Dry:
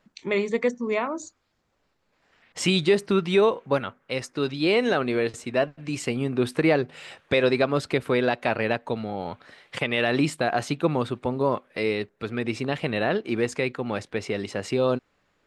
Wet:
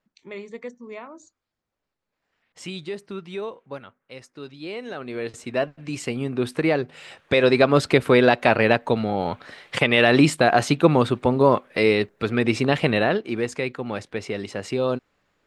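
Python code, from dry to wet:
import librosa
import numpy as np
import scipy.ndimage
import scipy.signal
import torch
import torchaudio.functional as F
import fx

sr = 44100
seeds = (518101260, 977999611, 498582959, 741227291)

y = fx.gain(x, sr, db=fx.line((4.88, -12.0), (5.44, -0.5), (7.06, -0.5), (7.76, 7.0), (12.89, 7.0), (13.29, -0.5)))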